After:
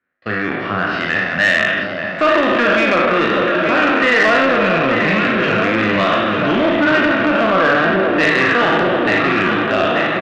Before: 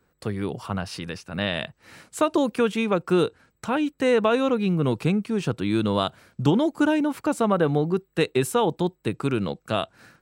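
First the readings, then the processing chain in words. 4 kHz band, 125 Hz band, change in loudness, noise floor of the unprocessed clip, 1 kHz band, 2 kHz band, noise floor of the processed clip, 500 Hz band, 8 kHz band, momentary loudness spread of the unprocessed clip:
+11.0 dB, +1.5 dB, +10.0 dB, -70 dBFS, +12.5 dB, +20.0 dB, -23 dBFS, +8.0 dB, n/a, 9 LU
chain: spectral trails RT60 1.85 s; gate with hold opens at -20 dBFS; flange 0.53 Hz, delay 7.8 ms, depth 7.5 ms, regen +89%; speaker cabinet 130–2800 Hz, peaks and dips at 140 Hz -7 dB, 440 Hz -8 dB, 630 Hz +3 dB, 900 Hz -10 dB, 1800 Hz +9 dB; doubler 37 ms -6.5 dB; echo with dull and thin repeats by turns 0.443 s, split 920 Hz, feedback 82%, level -5.5 dB; in parallel at +3 dB: limiter -17 dBFS, peak gain reduction 7 dB; on the sum: soft clip -13 dBFS, distortion -16 dB; tilt shelf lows -4.5 dB, about 640 Hz; gain +5.5 dB

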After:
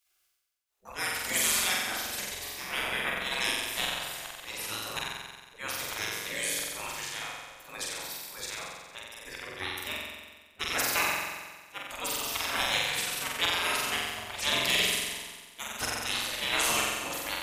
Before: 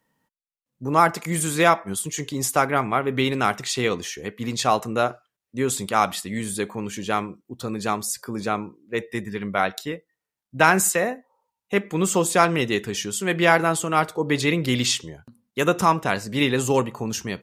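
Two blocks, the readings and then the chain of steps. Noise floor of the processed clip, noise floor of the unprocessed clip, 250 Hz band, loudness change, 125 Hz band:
-60 dBFS, under -85 dBFS, -20.0 dB, -7.0 dB, -20.0 dB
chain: auto swell 0.169 s; spectral gate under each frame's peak -20 dB weak; flutter echo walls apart 7.8 m, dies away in 1.4 s; gain +5 dB

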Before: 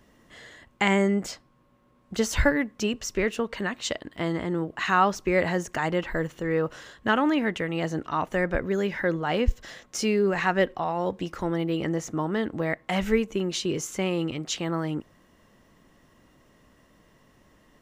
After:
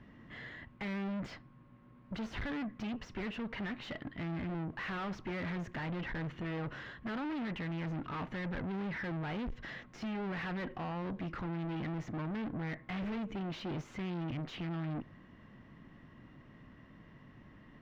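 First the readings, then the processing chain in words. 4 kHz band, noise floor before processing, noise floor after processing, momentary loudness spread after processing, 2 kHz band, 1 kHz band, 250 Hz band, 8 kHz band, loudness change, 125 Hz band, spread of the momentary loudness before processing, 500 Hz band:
-14.5 dB, -61 dBFS, -58 dBFS, 19 LU, -13.0 dB, -15.0 dB, -10.5 dB, under -25 dB, -13.0 dB, -7.0 dB, 8 LU, -18.0 dB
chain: de-esser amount 70%; graphic EQ 125/250/500/2000/8000 Hz +7/+4/-5/+4/+4 dB; tube stage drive 37 dB, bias 0.3; air absorption 330 m; gain +1.5 dB

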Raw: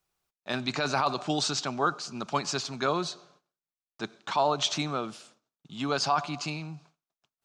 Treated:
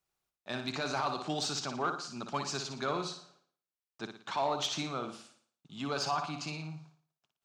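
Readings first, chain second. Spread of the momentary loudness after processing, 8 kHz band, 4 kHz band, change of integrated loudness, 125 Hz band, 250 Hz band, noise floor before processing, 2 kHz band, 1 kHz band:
13 LU, -5.0 dB, -5.5 dB, -5.5 dB, -5.5 dB, -5.5 dB, under -85 dBFS, -5.5 dB, -6.0 dB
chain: flutter echo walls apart 9.9 m, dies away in 0.46 s; added harmonics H 5 -24 dB, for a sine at -11.5 dBFS; gain -8 dB

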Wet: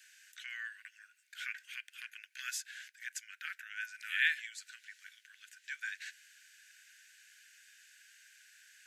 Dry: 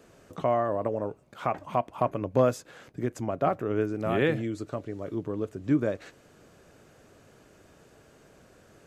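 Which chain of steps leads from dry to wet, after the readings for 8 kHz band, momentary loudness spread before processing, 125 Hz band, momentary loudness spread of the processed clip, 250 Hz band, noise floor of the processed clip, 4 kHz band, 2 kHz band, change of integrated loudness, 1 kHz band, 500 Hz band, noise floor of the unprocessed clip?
+4.5 dB, 10 LU, under -40 dB, 20 LU, under -40 dB, -70 dBFS, +4.0 dB, +4.0 dB, -10.5 dB, -27.0 dB, under -40 dB, -58 dBFS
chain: Chebyshev high-pass 1500 Hz, order 8; gain +4.5 dB

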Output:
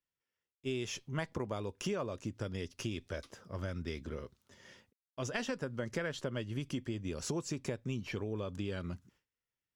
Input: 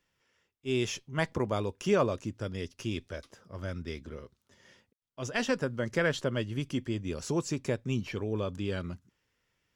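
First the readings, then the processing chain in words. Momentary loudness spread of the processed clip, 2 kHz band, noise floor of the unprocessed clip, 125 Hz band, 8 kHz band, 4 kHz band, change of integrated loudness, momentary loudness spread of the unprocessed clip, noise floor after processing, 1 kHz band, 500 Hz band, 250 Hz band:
8 LU, -7.0 dB, -78 dBFS, -5.0 dB, -3.0 dB, -5.0 dB, -6.5 dB, 13 LU, under -85 dBFS, -8.0 dB, -7.5 dB, -6.0 dB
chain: gate with hold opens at -59 dBFS; compressor 6:1, threshold -36 dBFS, peak gain reduction 14.5 dB; gain +2 dB

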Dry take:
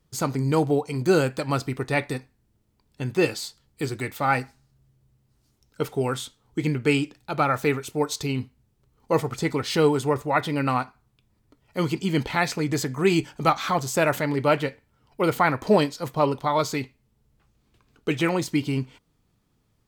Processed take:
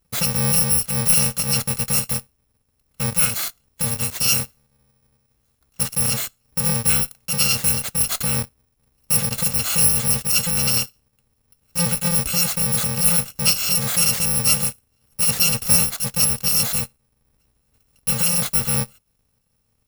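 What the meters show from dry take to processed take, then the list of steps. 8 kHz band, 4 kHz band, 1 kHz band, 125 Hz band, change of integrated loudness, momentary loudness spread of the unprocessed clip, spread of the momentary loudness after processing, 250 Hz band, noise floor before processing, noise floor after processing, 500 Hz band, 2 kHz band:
+19.5 dB, +11.0 dB, -7.5 dB, +2.0 dB, +7.0 dB, 11 LU, 9 LU, -4.0 dB, -68 dBFS, -68 dBFS, -10.0 dB, 0.0 dB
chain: FFT order left unsorted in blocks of 128 samples; in parallel at -11.5 dB: fuzz box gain 39 dB, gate -43 dBFS

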